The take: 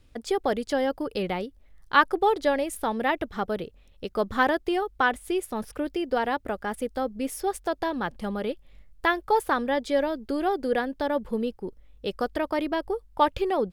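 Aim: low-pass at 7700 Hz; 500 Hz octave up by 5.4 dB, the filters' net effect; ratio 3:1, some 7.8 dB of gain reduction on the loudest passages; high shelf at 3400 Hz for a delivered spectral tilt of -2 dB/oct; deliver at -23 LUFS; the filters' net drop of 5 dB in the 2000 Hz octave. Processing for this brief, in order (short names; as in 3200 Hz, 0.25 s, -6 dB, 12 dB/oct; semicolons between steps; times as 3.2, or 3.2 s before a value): LPF 7700 Hz; bell 500 Hz +7 dB; bell 2000 Hz -6.5 dB; high shelf 3400 Hz -4 dB; compressor 3:1, threshold -24 dBFS; gain +6 dB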